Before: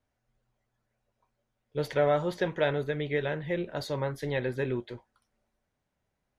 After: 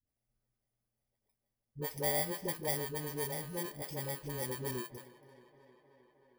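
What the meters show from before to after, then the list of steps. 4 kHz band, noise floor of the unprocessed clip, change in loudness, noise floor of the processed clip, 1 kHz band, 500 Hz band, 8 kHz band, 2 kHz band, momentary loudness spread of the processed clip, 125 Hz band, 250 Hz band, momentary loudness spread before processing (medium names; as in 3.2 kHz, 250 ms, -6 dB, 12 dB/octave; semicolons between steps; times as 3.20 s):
-2.5 dB, -82 dBFS, -6.0 dB, under -85 dBFS, -7.5 dB, -11.0 dB, no reading, -9.0 dB, 9 LU, -8.0 dB, -9.0 dB, 9 LU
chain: bit-reversed sample order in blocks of 32 samples; phase dispersion highs, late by 70 ms, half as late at 370 Hz; tape echo 312 ms, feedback 80%, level -19 dB, low-pass 4.8 kHz; trim -8 dB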